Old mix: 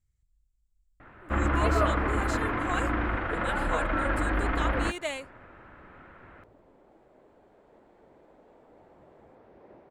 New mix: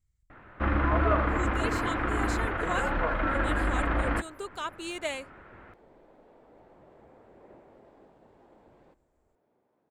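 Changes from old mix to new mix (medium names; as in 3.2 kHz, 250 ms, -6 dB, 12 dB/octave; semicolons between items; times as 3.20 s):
first sound: entry -0.70 s; second sound: entry -2.20 s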